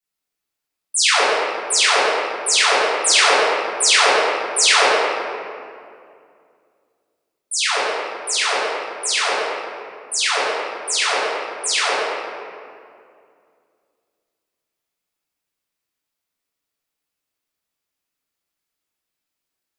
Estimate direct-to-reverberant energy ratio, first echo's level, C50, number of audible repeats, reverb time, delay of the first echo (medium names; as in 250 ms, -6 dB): -14.0 dB, no echo, -3.5 dB, no echo, 2.3 s, no echo